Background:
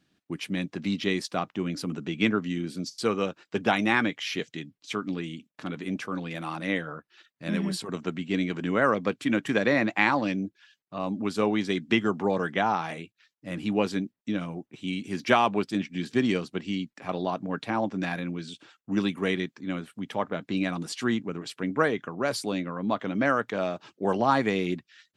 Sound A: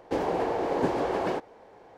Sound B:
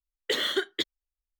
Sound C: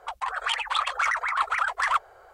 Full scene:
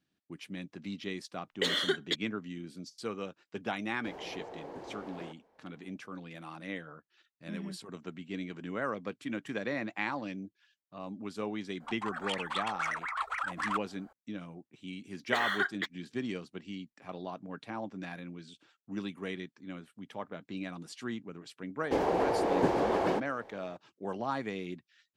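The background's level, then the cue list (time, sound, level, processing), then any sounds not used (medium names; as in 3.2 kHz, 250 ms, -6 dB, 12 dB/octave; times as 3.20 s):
background -11.5 dB
1.32 s: add B -2.5 dB + low-pass 11 kHz
3.93 s: add A -17 dB + peak limiter -17.5 dBFS
11.80 s: add C -9.5 dB
15.03 s: add B -11 dB + high-order bell 1.2 kHz +15 dB
21.80 s: add A -1 dB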